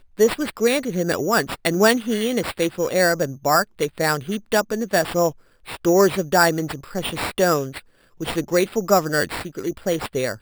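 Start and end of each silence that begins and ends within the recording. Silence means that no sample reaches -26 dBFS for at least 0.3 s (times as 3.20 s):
5.30–5.69 s
7.78–8.21 s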